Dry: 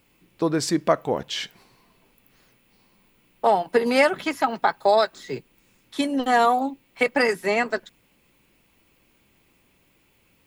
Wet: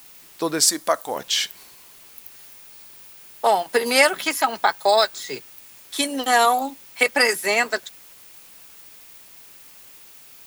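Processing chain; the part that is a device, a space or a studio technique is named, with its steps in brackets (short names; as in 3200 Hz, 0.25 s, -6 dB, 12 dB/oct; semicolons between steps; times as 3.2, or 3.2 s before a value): turntable without a phono preamp (RIAA curve recording; white noise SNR 26 dB); 0.66–1.16 fifteen-band EQ 160 Hz -12 dB, 400 Hz -7 dB, 2500 Hz -7 dB, 10000 Hz +4 dB; gain +2 dB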